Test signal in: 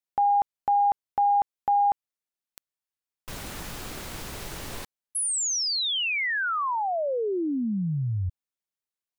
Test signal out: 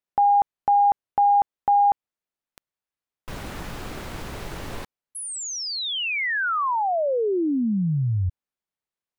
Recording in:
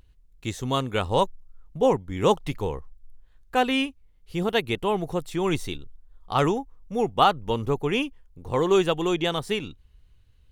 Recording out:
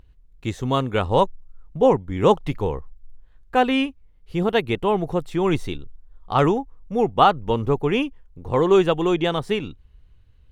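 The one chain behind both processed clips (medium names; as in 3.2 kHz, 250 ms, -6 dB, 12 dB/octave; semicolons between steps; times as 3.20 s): treble shelf 3.7 kHz -11.5 dB; trim +4.5 dB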